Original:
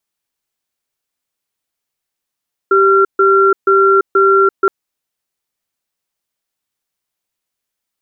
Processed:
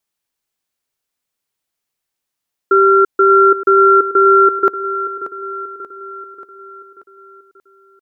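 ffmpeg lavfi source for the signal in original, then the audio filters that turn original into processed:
-f lavfi -i "aevalsrc='0.335*(sin(2*PI*390*t)+sin(2*PI*1370*t))*clip(min(mod(t,0.48),0.34-mod(t,0.48))/0.005,0,1)':d=1.97:s=44100"
-af "aecho=1:1:584|1168|1752|2336|2920|3504:0.224|0.121|0.0653|0.0353|0.019|0.0103"

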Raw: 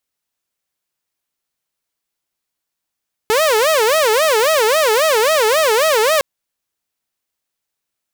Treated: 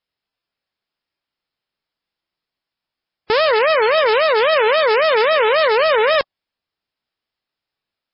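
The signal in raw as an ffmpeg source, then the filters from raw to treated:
-f lavfi -i "aevalsrc='0.355*(2*mod((535*t-108/(2*PI*3.7)*sin(2*PI*3.7*t)),1)-1)':d=2.91:s=44100"
-ar 12000 -c:a libmp3lame -b:a 16k

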